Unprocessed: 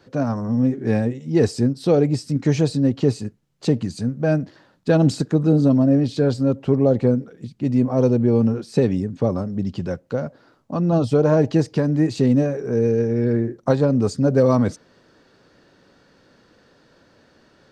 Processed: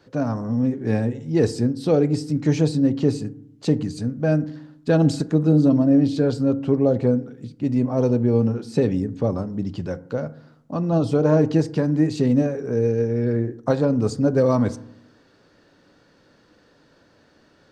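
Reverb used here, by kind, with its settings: FDN reverb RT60 0.71 s, low-frequency decay 1.35×, high-frequency decay 0.35×, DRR 13.5 dB; trim -2 dB

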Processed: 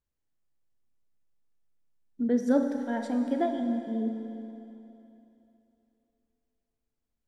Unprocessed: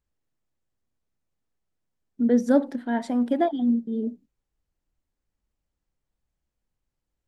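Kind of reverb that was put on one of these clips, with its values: Schroeder reverb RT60 3.1 s, combs from 28 ms, DRR 5 dB; trim -5.5 dB

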